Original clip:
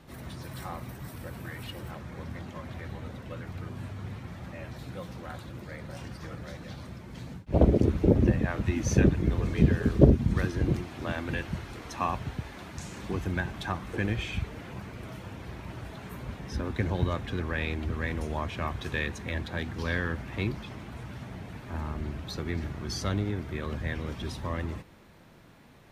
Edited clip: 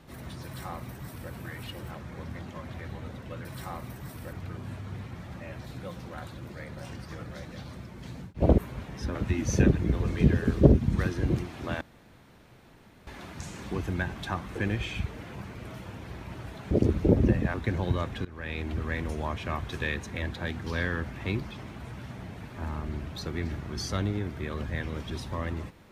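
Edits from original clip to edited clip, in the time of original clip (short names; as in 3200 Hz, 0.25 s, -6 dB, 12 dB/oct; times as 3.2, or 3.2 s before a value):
0.44–1.32 copy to 3.45
7.7–8.53 swap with 16.09–16.66
11.19–12.45 room tone
17.37–17.81 fade in, from -20 dB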